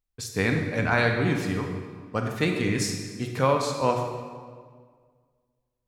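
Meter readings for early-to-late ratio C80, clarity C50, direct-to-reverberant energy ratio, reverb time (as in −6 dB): 5.5 dB, 4.0 dB, 2.5 dB, 1.8 s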